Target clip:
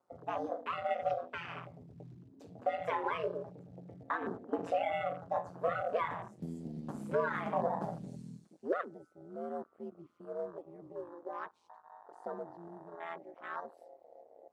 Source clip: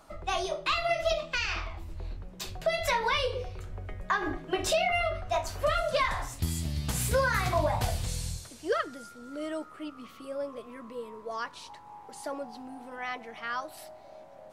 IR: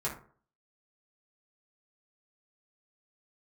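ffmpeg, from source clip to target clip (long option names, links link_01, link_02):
-af "aeval=exprs='val(0)*sin(2*PI*85*n/s)':channel_layout=same,equalizer=frequency=3600:width=0.5:gain=-12,acrusher=bits=6:mode=log:mix=0:aa=0.000001,highpass=220,lowpass=7000,afwtdn=0.00501"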